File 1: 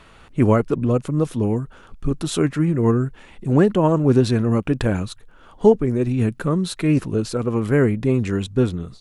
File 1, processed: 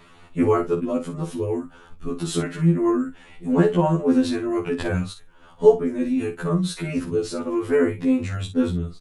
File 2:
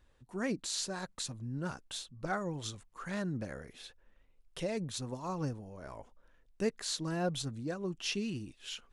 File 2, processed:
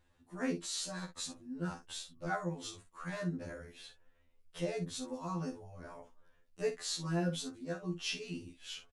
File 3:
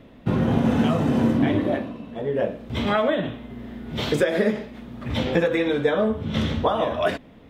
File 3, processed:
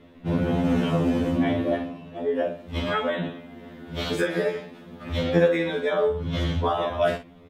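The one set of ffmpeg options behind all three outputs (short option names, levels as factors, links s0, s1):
-filter_complex "[0:a]asplit=2[s0][s1];[s1]adelay=49,volume=0.316[s2];[s0][s2]amix=inputs=2:normalize=0,afftfilt=real='re*2*eq(mod(b,4),0)':imag='im*2*eq(mod(b,4),0)':win_size=2048:overlap=0.75"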